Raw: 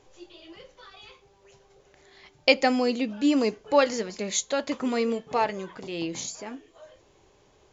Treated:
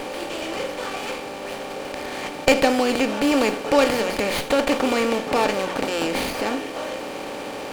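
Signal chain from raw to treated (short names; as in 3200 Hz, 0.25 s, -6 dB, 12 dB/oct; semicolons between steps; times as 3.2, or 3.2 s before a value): per-bin compression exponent 0.4; running maximum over 5 samples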